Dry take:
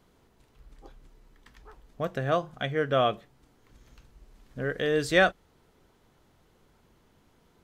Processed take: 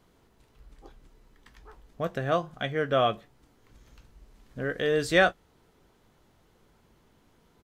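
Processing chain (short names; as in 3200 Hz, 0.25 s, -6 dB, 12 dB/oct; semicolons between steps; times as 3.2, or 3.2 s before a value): doubler 18 ms -12 dB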